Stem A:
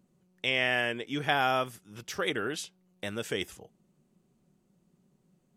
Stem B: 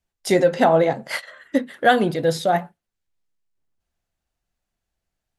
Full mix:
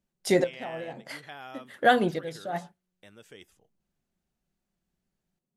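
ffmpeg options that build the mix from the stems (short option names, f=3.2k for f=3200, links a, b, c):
-filter_complex "[0:a]volume=-17dB,asplit=2[a][b];[1:a]volume=-4.5dB[c];[b]apad=whole_len=237616[d];[c][d]sidechaincompress=threshold=-56dB:ratio=10:attack=5.9:release=109[e];[a][e]amix=inputs=2:normalize=0"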